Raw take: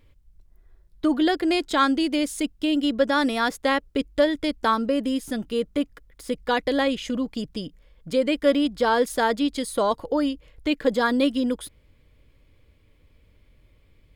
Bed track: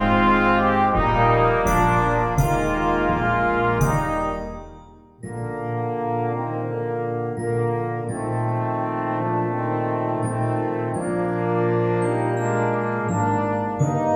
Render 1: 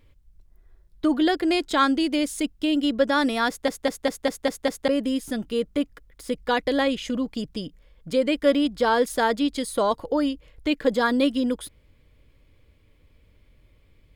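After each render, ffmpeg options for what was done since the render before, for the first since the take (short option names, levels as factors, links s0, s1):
-filter_complex "[0:a]asplit=8[s0][s1][s2][s3][s4][s5][s6][s7];[s0]atrim=end=3.682[s8];[s1]atrim=start=3.478:end=3.682[s9];[s2]atrim=start=3.478:end=3.682[s10];[s3]atrim=start=3.478:end=3.682[s11];[s4]atrim=start=3.478:end=3.682[s12];[s5]atrim=start=3.478:end=3.682[s13];[s6]atrim=start=3.478:end=3.682[s14];[s7]atrim=start=4.878[s15];[s8][s9]acrossfade=d=0.004:c1=hsin:c2=hsin[s16];[s16][s10]acrossfade=d=0.004:c1=hsin:c2=hsin[s17];[s17][s11]acrossfade=d=0.004:c1=hsin:c2=hsin[s18];[s18][s12]acrossfade=d=0.004:c1=hsin:c2=hsin[s19];[s19][s13]acrossfade=d=0.004:c1=hsin:c2=hsin[s20];[s20][s14]acrossfade=d=0.004:c1=hsin:c2=hsin[s21];[s21][s15]acrossfade=d=0.004:c1=hsin:c2=hsin"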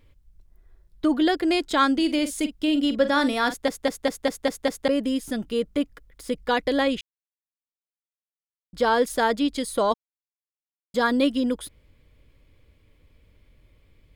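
-filter_complex "[0:a]asettb=1/sr,asplit=3[s0][s1][s2];[s0]atrim=end=1.934[s3];[s1]atrim=start=1.93:end=3.54,asetpts=PTS-STARTPTS,afade=t=in:d=0.004:c=qsin,afade=t=out:st=1.606:d=0.004:c=qsin,asplit=2[s4][s5];[s5]adelay=46,volume=0.266[s6];[s4][s6]amix=inputs=2:normalize=0,atrim=end_sample=71001[s7];[s2]atrim=start=3.536[s8];[s3][s7]acrossfade=d=0.004:c1=hsin:c2=qsin[s9];[s9][s8]acrossfade=d=0.004:c1=qsin:c2=hsin,asplit=5[s10][s11][s12][s13][s14];[s10]atrim=end=7.01,asetpts=PTS-STARTPTS,afade=t=out:st=7.006:d=0.004:c=hsin[s15];[s11]atrim=start=7.01:end=8.73,asetpts=PTS-STARTPTS,volume=0[s16];[s12]atrim=start=8.73:end=9.94,asetpts=PTS-STARTPTS,afade=t=in:d=0.004:c=hsin,afade=t=out:st=1.206:d=0.004:c=hsin[s17];[s13]atrim=start=9.94:end=10.94,asetpts=PTS-STARTPTS,volume=0[s18];[s14]atrim=start=10.94,asetpts=PTS-STARTPTS,afade=t=in:d=0.004:c=hsin[s19];[s15][s16][s17][s18][s19]concat=n=5:v=0:a=1"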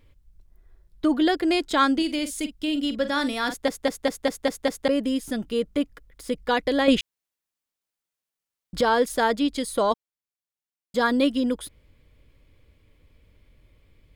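-filter_complex "[0:a]asettb=1/sr,asplit=3[s0][s1][s2];[s0]atrim=end=2.024[s3];[s1]atrim=start=2.02:end=3.49,asetpts=PTS-STARTPTS,afade=t=in:d=0.004:c=qsin,afade=t=out:st=1.466:d=0.004:c=qsin,equalizer=f=590:w=0.38:g=-5[s4];[s2]atrim=start=3.486[s5];[s3][s4]acrossfade=d=0.004:c1=hsin:c2=qsin[s6];[s6][s5]acrossfade=d=0.004:c1=qsin:c2=hsin,asplit=3[s7][s8][s9];[s7]atrim=end=6.882[s10];[s8]atrim=start=6.878:end=8.812,asetpts=PTS-STARTPTS,volume=2.51[s11];[s9]atrim=start=8.808[s12];[s10][s11]acrossfade=d=0.004:c1=hsin:c2=hsin[s13];[s13][s12]acrossfade=d=0.004:c1=hsin:c2=hsin"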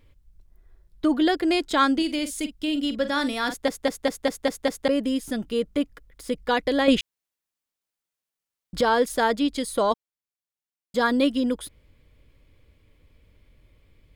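-af anull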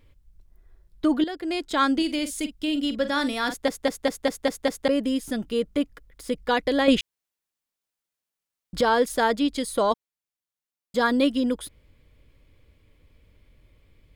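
-filter_complex "[0:a]asplit=2[s0][s1];[s0]atrim=end=1.24,asetpts=PTS-STARTPTS,afade=t=out:st=1.236:d=0.004:c=hsin:silence=0.211349[s2];[s1]atrim=start=1.24,asetpts=PTS-STARTPTS,afade=t=in:d=0.74:silence=0.211349[s3];[s2][s3]concat=n=2:v=0:a=1"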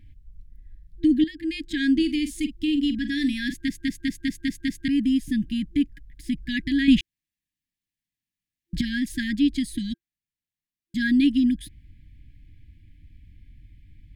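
-af "bass=f=250:g=9,treble=f=4000:g=-6,afftfilt=real='re*(1-between(b*sr/4096,340,1600))':imag='im*(1-between(b*sr/4096,340,1600))':win_size=4096:overlap=0.75"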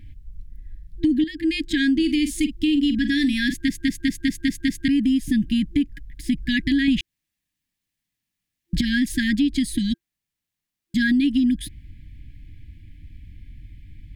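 -filter_complex "[0:a]asplit=2[s0][s1];[s1]alimiter=limit=0.119:level=0:latency=1:release=80,volume=1.33[s2];[s0][s2]amix=inputs=2:normalize=0,acompressor=threshold=0.158:ratio=6"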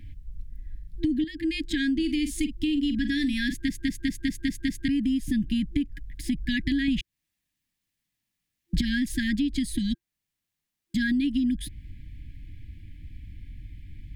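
-filter_complex "[0:a]acrossover=split=130[s0][s1];[s1]acompressor=threshold=0.0178:ratio=1.5[s2];[s0][s2]amix=inputs=2:normalize=0"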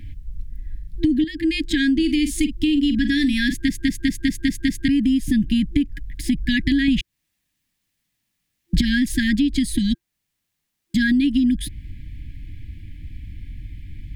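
-af "volume=2.24"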